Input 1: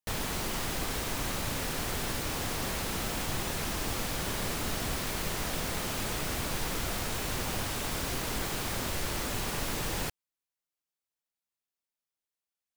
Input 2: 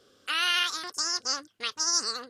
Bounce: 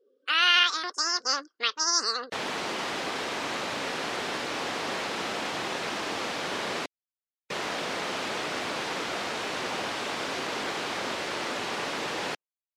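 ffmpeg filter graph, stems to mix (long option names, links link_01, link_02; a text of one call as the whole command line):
ffmpeg -i stem1.wav -i stem2.wav -filter_complex "[0:a]adelay=2250,volume=1.5dB,asplit=3[link_01][link_02][link_03];[link_01]atrim=end=6.86,asetpts=PTS-STARTPTS,afade=type=out:start_time=6.856:duration=0.004:curve=hsin[link_04];[link_02]atrim=start=6.86:end=7.5,asetpts=PTS-STARTPTS,volume=0[link_05];[link_03]atrim=start=7.5,asetpts=PTS-STARTPTS,afade=type=in:duration=0.004:curve=hsin[link_06];[link_04][link_05][link_06]concat=n=3:v=0:a=1[link_07];[1:a]volume=2dB[link_08];[link_07][link_08]amix=inputs=2:normalize=0,afftdn=noise_reduction=28:noise_floor=-51,dynaudnorm=framelen=140:gausssize=5:maxgain=4dB,highpass=320,lowpass=4500" out.wav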